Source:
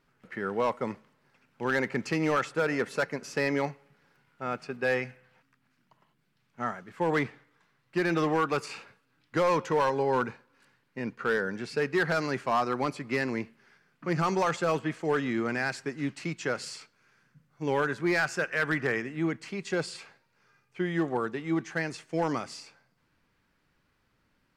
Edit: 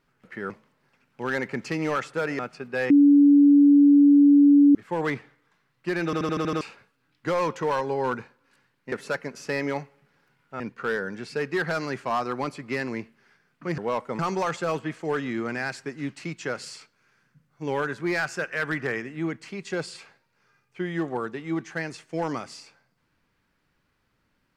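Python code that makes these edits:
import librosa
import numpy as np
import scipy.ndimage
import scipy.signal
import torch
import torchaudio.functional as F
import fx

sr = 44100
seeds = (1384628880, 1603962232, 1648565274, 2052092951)

y = fx.edit(x, sr, fx.move(start_s=0.5, length_s=0.41, to_s=14.19),
    fx.move(start_s=2.8, length_s=1.68, to_s=11.01),
    fx.bleep(start_s=4.99, length_s=1.85, hz=286.0, db=-11.5),
    fx.stutter_over(start_s=8.14, slice_s=0.08, count=7), tone=tone)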